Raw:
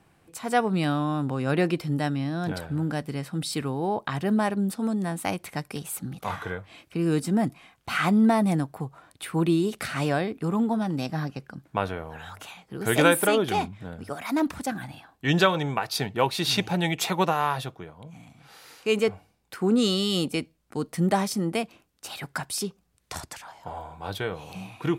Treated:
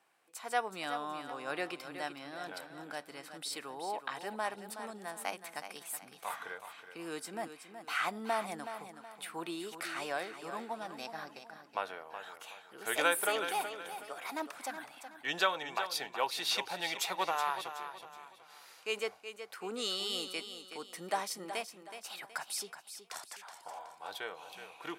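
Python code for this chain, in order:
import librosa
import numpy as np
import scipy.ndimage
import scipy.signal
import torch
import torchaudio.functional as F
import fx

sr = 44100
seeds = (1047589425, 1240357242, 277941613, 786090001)

y = scipy.signal.sosfilt(scipy.signal.butter(2, 630.0, 'highpass', fs=sr, output='sos'), x)
y = fx.echo_feedback(y, sr, ms=372, feedback_pct=36, wet_db=-10)
y = F.gain(torch.from_numpy(y), -7.0).numpy()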